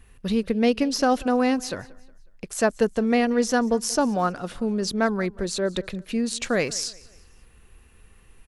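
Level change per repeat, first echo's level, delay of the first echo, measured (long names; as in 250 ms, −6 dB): −7.5 dB, −22.5 dB, 182 ms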